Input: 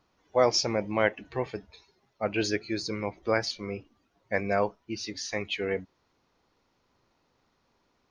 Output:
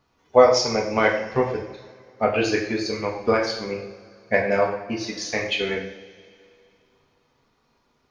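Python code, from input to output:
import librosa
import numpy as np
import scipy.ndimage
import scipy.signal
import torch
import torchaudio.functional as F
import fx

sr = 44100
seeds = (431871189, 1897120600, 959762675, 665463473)

y = fx.transient(x, sr, attack_db=8, sustain_db=-4)
y = fx.rev_double_slope(y, sr, seeds[0], early_s=0.65, late_s=2.7, knee_db=-19, drr_db=-2.0)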